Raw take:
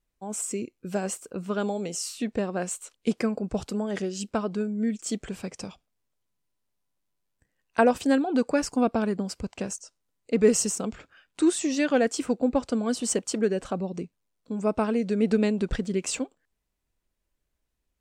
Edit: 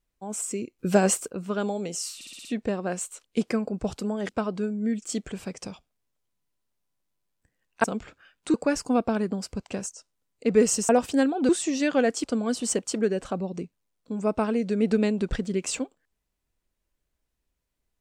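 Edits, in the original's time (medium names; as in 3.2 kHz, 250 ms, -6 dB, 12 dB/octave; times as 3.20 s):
0.79–1.28 s: gain +9 dB
2.15 s: stutter 0.06 s, 6 plays
3.99–4.26 s: delete
7.81–8.41 s: swap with 10.76–11.46 s
12.21–12.64 s: delete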